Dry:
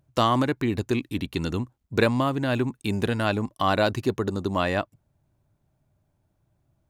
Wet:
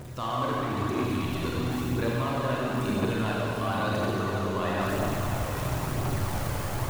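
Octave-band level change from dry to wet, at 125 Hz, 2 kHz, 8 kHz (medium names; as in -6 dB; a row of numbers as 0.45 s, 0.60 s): +0.5 dB, -3.0 dB, +6.0 dB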